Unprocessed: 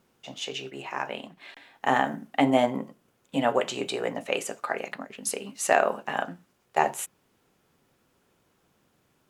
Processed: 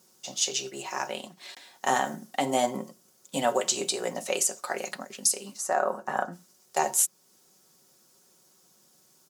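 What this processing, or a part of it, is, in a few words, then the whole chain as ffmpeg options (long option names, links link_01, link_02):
over-bright horn tweeter: -filter_complex "[0:a]highpass=frequency=190:poles=1,highshelf=frequency=3800:width_type=q:width=1.5:gain=12.5,aecho=1:1:5.4:0.46,alimiter=limit=-11.5dB:level=0:latency=1:release=328,asplit=3[link_01][link_02][link_03];[link_01]afade=type=out:start_time=5.56:duration=0.02[link_04];[link_02]highshelf=frequency=2000:width_type=q:width=1.5:gain=-11,afade=type=in:start_time=5.56:duration=0.02,afade=type=out:start_time=6.32:duration=0.02[link_05];[link_03]afade=type=in:start_time=6.32:duration=0.02[link_06];[link_04][link_05][link_06]amix=inputs=3:normalize=0"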